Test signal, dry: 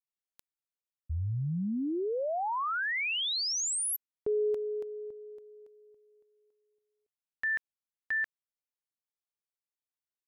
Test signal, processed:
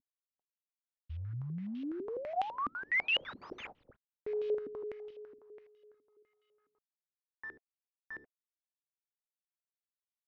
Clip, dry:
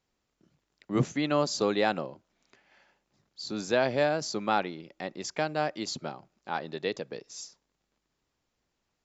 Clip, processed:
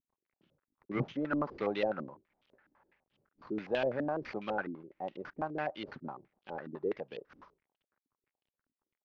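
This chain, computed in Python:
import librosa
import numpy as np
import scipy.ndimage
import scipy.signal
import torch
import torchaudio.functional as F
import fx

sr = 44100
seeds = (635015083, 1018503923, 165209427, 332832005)

y = fx.cvsd(x, sr, bps=32000)
y = fx.notch(y, sr, hz=690.0, q=12.0)
y = fx.filter_held_lowpass(y, sr, hz=12.0, low_hz=270.0, high_hz=3000.0)
y = y * 10.0 ** (-8.0 / 20.0)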